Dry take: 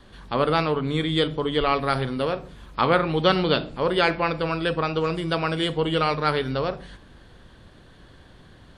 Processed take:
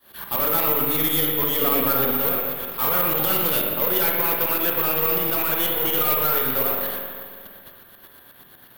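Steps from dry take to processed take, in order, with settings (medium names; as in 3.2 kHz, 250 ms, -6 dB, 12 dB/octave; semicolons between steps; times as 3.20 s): gate -46 dBFS, range -10 dB; tremolo saw up 8.3 Hz, depth 90%; overdrive pedal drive 27 dB, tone 7.8 kHz, clips at -15 dBFS; reverberation RT60 2.0 s, pre-delay 46 ms, DRR 1.5 dB; careless resampling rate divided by 3×, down none, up zero stuff; 1.61–2.11 s: small resonant body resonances 250/490 Hz, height 9 dB; 5.40–6.05 s: band-stop 4.9 kHz, Q 14; trim -6.5 dB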